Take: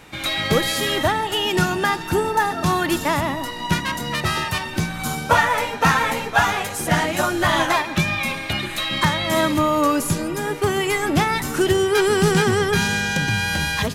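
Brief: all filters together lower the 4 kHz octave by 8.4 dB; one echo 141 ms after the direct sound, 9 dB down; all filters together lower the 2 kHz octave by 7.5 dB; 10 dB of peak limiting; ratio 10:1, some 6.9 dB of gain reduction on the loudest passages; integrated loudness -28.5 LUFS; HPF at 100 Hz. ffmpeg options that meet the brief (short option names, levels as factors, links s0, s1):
-af "highpass=100,equalizer=f=2000:t=o:g=-8,equalizer=f=4000:t=o:g=-8,acompressor=threshold=0.0891:ratio=10,alimiter=limit=0.0944:level=0:latency=1,aecho=1:1:141:0.355,volume=1.06"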